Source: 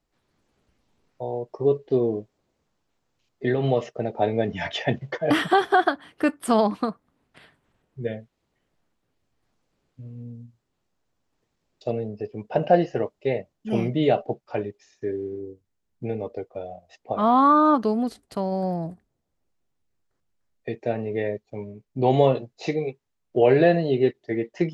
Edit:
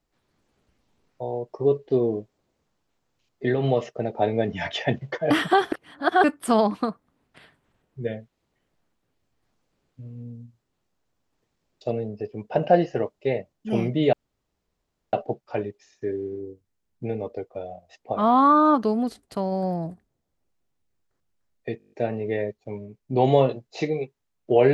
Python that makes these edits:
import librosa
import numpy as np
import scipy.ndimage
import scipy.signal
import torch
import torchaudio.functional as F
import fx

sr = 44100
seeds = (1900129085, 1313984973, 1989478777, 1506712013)

y = fx.edit(x, sr, fx.reverse_span(start_s=5.72, length_s=0.52),
    fx.insert_room_tone(at_s=14.13, length_s=1.0),
    fx.stutter(start_s=20.78, slice_s=0.02, count=8), tone=tone)